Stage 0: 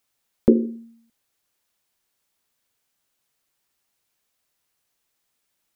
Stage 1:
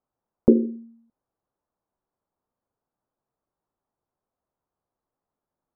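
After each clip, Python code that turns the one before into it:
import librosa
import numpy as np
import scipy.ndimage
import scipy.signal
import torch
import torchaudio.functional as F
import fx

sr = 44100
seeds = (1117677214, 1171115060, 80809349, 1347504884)

y = scipy.signal.sosfilt(scipy.signal.butter(4, 1100.0, 'lowpass', fs=sr, output='sos'), x)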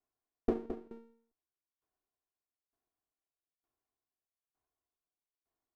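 y = fx.lower_of_two(x, sr, delay_ms=2.8)
y = y + 10.0 ** (-4.5 / 20.0) * np.pad(y, (int(216 * sr / 1000.0), 0))[:len(y)]
y = fx.tremolo_decay(y, sr, direction='decaying', hz=1.1, depth_db=20)
y = y * librosa.db_to_amplitude(-3.5)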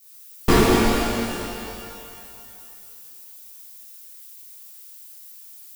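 y = fx.halfwave_hold(x, sr)
y = fx.dmg_noise_colour(y, sr, seeds[0], colour='violet', level_db=-60.0)
y = fx.rev_shimmer(y, sr, seeds[1], rt60_s=2.4, semitones=12, shimmer_db=-8, drr_db=-11.0)
y = y * librosa.db_to_amplitude(5.0)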